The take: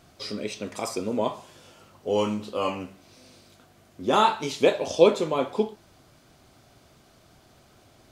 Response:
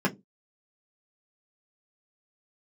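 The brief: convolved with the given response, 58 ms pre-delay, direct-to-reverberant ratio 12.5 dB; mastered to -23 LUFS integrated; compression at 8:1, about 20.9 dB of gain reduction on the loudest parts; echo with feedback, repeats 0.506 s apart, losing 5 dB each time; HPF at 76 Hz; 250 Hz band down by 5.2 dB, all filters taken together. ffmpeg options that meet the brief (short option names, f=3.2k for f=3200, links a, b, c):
-filter_complex "[0:a]highpass=76,equalizer=f=250:t=o:g=-7,acompressor=threshold=-35dB:ratio=8,aecho=1:1:506|1012|1518|2024|2530|3036|3542:0.562|0.315|0.176|0.0988|0.0553|0.031|0.0173,asplit=2[a][b];[1:a]atrim=start_sample=2205,adelay=58[c];[b][c]afir=irnorm=-1:irlink=0,volume=-24dB[d];[a][d]amix=inputs=2:normalize=0,volume=16.5dB"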